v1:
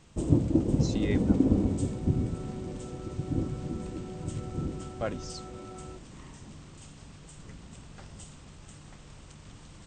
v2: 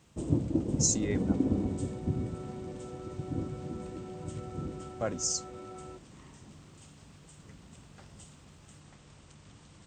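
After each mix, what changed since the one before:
speech: add resonant high shelf 4.9 kHz +14 dB, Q 3; first sound -4.5 dB; master: add high-pass 60 Hz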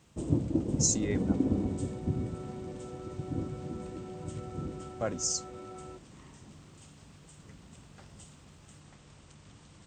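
no change

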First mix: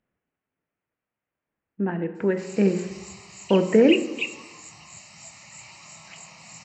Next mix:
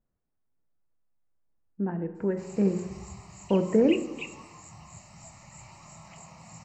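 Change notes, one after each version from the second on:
speech -6.0 dB; master: remove frequency weighting D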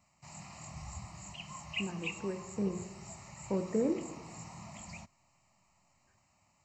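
speech -9.5 dB; background: entry -2.15 s

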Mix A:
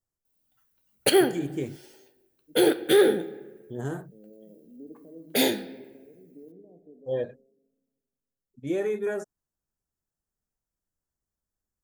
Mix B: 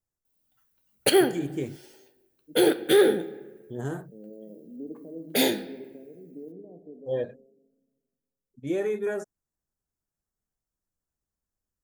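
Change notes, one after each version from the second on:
second voice +6.0 dB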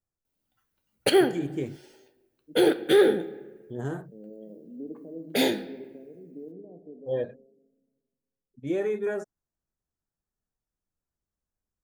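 master: add treble shelf 7.3 kHz -10 dB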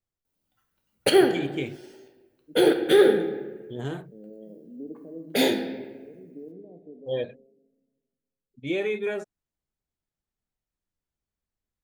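first voice: add high-order bell 3 kHz +13 dB 1.2 oct; background: send +9.0 dB

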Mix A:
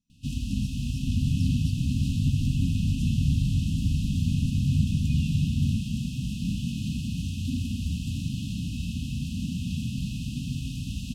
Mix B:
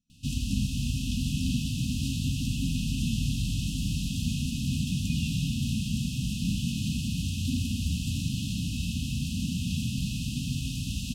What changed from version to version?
first sound: add treble shelf 2.5 kHz +7 dB; second sound: add tilt EQ +3 dB/octave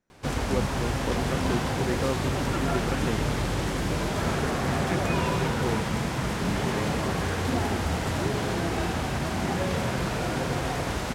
master: remove brick-wall FIR band-stop 280–2500 Hz

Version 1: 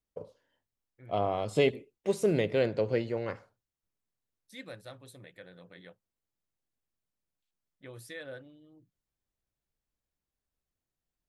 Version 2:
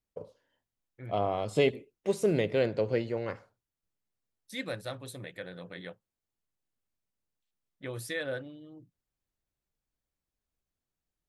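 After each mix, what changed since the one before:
second voice +8.5 dB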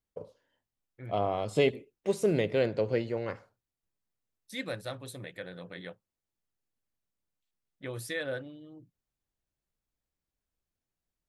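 no change

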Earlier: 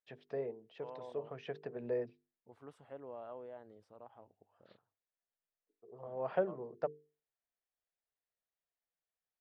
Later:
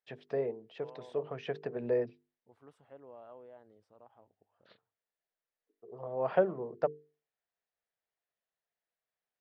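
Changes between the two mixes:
first voice +6.0 dB; second voice -4.0 dB

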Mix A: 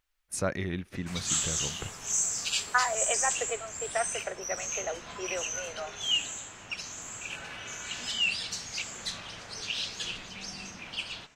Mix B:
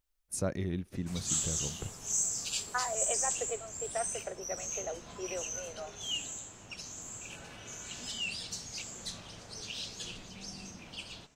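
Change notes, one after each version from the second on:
master: add peaking EQ 1.9 kHz -11 dB 2.5 oct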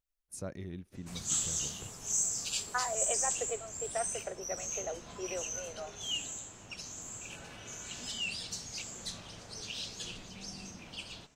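first voice -8.0 dB

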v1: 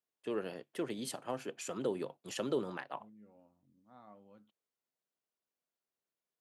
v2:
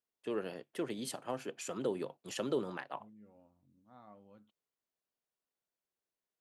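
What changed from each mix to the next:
second voice: remove high-pass 120 Hz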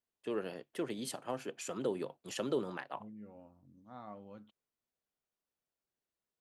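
second voice +8.0 dB

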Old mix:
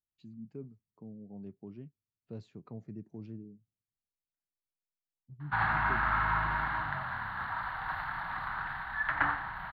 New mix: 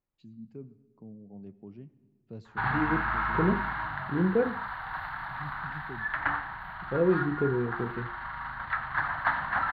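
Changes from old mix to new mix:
second voice: unmuted; background: entry -2.95 s; reverb: on, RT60 1.4 s

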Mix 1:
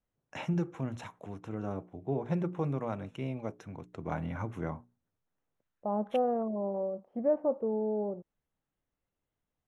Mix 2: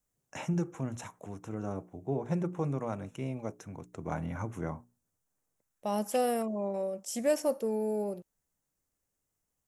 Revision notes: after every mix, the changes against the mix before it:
second voice: remove low-pass 1.1 kHz 24 dB/octave; master: add resonant high shelf 5.2 kHz +9 dB, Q 1.5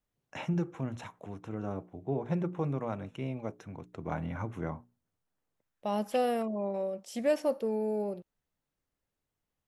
master: add resonant high shelf 5.2 kHz -9 dB, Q 1.5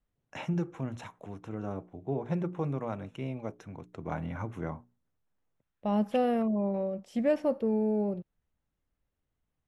second voice: add tone controls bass +11 dB, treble -13 dB

